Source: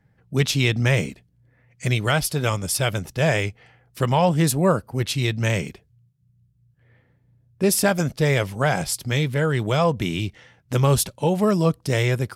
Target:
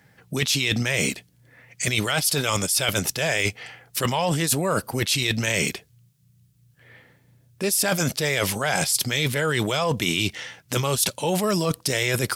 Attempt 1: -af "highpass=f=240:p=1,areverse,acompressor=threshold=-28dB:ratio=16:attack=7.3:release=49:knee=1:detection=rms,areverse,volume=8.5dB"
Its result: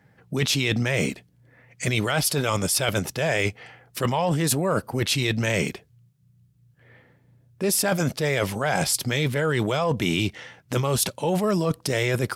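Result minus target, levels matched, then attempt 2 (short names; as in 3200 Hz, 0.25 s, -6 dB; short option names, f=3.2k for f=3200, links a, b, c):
4000 Hz band -2.5 dB
-af "highpass=f=240:p=1,highshelf=f=2.2k:g=11.5,areverse,acompressor=threshold=-28dB:ratio=16:attack=7.3:release=49:knee=1:detection=rms,areverse,volume=8.5dB"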